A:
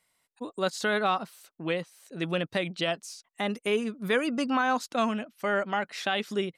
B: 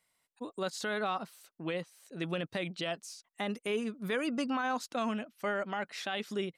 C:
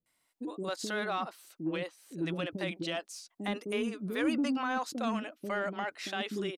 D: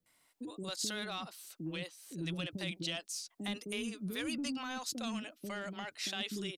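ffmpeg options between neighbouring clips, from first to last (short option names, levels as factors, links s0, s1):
-af "alimiter=limit=0.1:level=0:latency=1:release=30,volume=0.631"
-filter_complex "[0:a]equalizer=f=310:t=o:w=0.45:g=8.5,acrossover=split=410[s0][s1];[s1]adelay=60[s2];[s0][s2]amix=inputs=2:normalize=0,asplit=2[s3][s4];[s4]asoftclip=type=tanh:threshold=0.0376,volume=0.501[s5];[s3][s5]amix=inputs=2:normalize=0,volume=0.75"
-filter_complex "[0:a]acrossover=split=150|3000[s0][s1][s2];[s1]acompressor=threshold=0.001:ratio=2[s3];[s0][s3][s2]amix=inputs=3:normalize=0,volume=1.78"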